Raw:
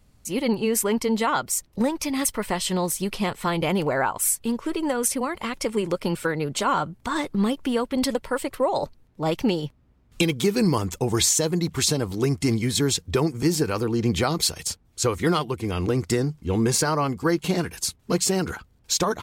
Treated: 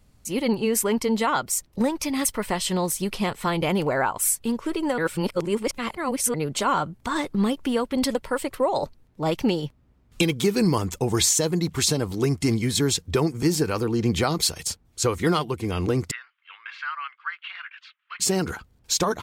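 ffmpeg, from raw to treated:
-filter_complex "[0:a]asettb=1/sr,asplit=3[a][b][c];[a]atrim=end=16.114[d];[b]atrim=start=16.11:end=18.2,asetpts=PTS-STARTPTS,afade=t=in:d=0.004:c=qsin,afade=t=out:st=2.086:d=0.004:c=qsin,asuperpass=centerf=2000:order=8:qfactor=1[e];[c]atrim=start=18.196[f];[d][e]acrossfade=d=0.004:c1=hsin:c2=qsin[g];[g][f]acrossfade=d=0.004:c1=qsin:c2=hsin,asplit=3[h][i][j];[h]atrim=end=4.982[k];[i]atrim=start=4.978:end=6.342,asetpts=PTS-STARTPTS,areverse[l];[j]atrim=start=6.338[m];[k][l]acrossfade=d=0.004:c1=hsin:c2=hsin[n];[n][m]acrossfade=d=0.004:c1=hsin:c2=hsin"

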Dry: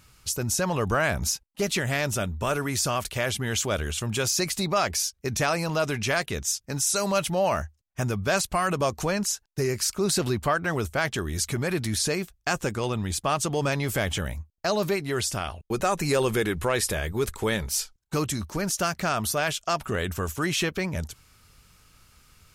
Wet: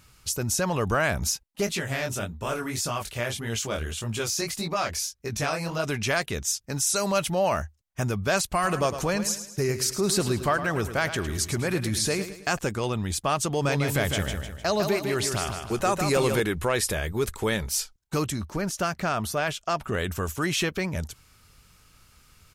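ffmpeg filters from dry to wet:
-filter_complex "[0:a]asplit=3[a][b][c];[a]afade=t=out:st=1.66:d=0.02[d];[b]flanger=delay=17.5:depth=7.9:speed=1.7,afade=t=in:st=1.66:d=0.02,afade=t=out:st=5.83:d=0.02[e];[c]afade=t=in:st=5.83:d=0.02[f];[d][e][f]amix=inputs=3:normalize=0,asplit=3[g][h][i];[g]afade=t=out:st=8.62:d=0.02[j];[h]aecho=1:1:107|214|321|428:0.282|0.121|0.0521|0.0224,afade=t=in:st=8.62:d=0.02,afade=t=out:st=12.57:d=0.02[k];[i]afade=t=in:st=12.57:d=0.02[l];[j][k][l]amix=inputs=3:normalize=0,asettb=1/sr,asplit=3[m][n][o];[m]atrim=end=13.494[p];[n]atrim=start=13.49:end=16.4,asetpts=PTS-STARTPTS,afade=t=in:d=0.004:c=qsin,afade=t=out:st=2.906:d=0.004:c=qsin,aecho=1:1:152|304|456|608|760:0.501|0.21|0.0884|0.0371|0.0156,atrim=end_sample=128331[q];[o]atrim=start=16.396[r];[p][q]acrossfade=d=0.004:c1=hsin:c2=qsin[s];[s][r]acrossfade=d=0.004:c1=qsin:c2=hsin,asettb=1/sr,asplit=3[t][u][v];[t]atrim=end=18.304[w];[u]atrim=start=18.3:end=19.93,asetpts=PTS-STARTPTS,afade=t=in:d=0.004:c=qsin,afade=t=out:st=1.626:d=0.004:c=qsin,highshelf=f=3.6k:g=-7[x];[v]atrim=start=19.926[y];[w][x]acrossfade=d=0.004:c1=hsin:c2=qsin[z];[z][y]acrossfade=d=0.004:c1=qsin:c2=hsin"

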